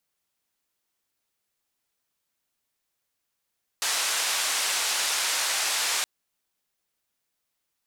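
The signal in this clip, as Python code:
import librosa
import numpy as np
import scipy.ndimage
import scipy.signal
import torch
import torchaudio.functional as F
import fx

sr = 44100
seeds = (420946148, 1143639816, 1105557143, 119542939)

y = fx.band_noise(sr, seeds[0], length_s=2.22, low_hz=730.0, high_hz=8200.0, level_db=-26.5)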